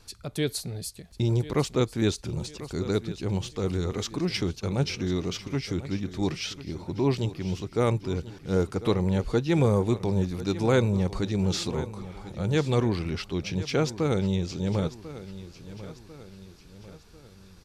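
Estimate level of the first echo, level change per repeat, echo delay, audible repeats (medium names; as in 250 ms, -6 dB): -15.0 dB, -6.5 dB, 1045 ms, 3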